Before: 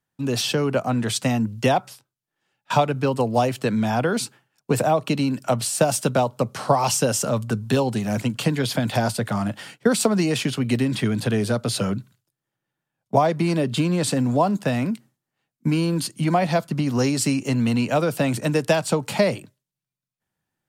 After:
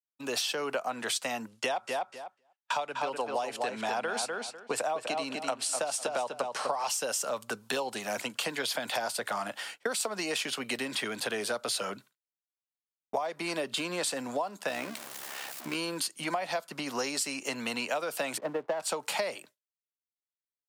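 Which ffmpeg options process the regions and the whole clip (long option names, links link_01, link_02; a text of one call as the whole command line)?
ffmpeg -i in.wav -filter_complex "[0:a]asettb=1/sr,asplit=3[link_01][link_02][link_03];[link_01]atrim=end=1.484[link_04];[link_02]atrim=start=1.48:end=6.89,asetpts=PTS-STARTPTS,afade=type=in:duration=0.004:curve=qsin,afade=type=out:start_time=5.406:duration=0.004:curve=qsin,lowpass=frequency=11000:width=0.5412,lowpass=frequency=11000:width=1.3066,asplit=2[link_05][link_06];[link_06]adelay=249,lowpass=frequency=3600:poles=1,volume=-6dB,asplit=2[link_07][link_08];[link_08]adelay=249,lowpass=frequency=3600:poles=1,volume=0.19,asplit=2[link_09][link_10];[link_10]adelay=249,lowpass=frequency=3600:poles=1,volume=0.19[link_11];[link_05][link_07][link_09][link_11]amix=inputs=4:normalize=0,atrim=end_sample=238581[link_12];[link_03]atrim=start=6.886[link_13];[link_04][link_12]acrossfade=duration=0.004:curve1=hsin:curve2=qsin[link_14];[link_14][link_13]acrossfade=duration=0.004:curve1=qsin:curve2=hsin,asettb=1/sr,asplit=3[link_15][link_16][link_17];[link_15]atrim=end=14.694[link_18];[link_16]atrim=start=14.69:end=15.75,asetpts=PTS-STARTPTS,afade=type=in:duration=0.004:curve=qsin,afade=type=out:start_time=1.056:duration=0.004:curve=qsin,aeval=exprs='val(0)+0.5*0.0335*sgn(val(0))':channel_layout=same,tremolo=f=68:d=0.621[link_19];[link_17]atrim=start=15.746[link_20];[link_18][link_19]acrossfade=duration=0.004:curve1=hsin:curve2=qsin[link_21];[link_21][link_20]acrossfade=duration=0.004:curve1=qsin:curve2=hsin,asettb=1/sr,asplit=3[link_22][link_23][link_24];[link_22]atrim=end=18.384[link_25];[link_23]atrim=start=18.38:end=18.8,asetpts=PTS-STARTPTS,afade=type=in:duration=0.004:curve=qsin,afade=type=out:start_time=0.416:duration=0.004:curve=qsin,lowpass=1200,adynamicsmooth=sensitivity=2:basefreq=920,aeval=exprs='sgn(val(0))*max(abs(val(0))-0.00211,0)':channel_layout=same[link_26];[link_24]atrim=start=18.796[link_27];[link_25][link_26]acrossfade=duration=0.004:curve1=hsin:curve2=qsin[link_28];[link_28][link_27]acrossfade=duration=0.004:curve1=qsin:curve2=hsin,highpass=620,agate=range=-33dB:threshold=-47dB:ratio=3:detection=peak,acompressor=threshold=-28dB:ratio=10" out.wav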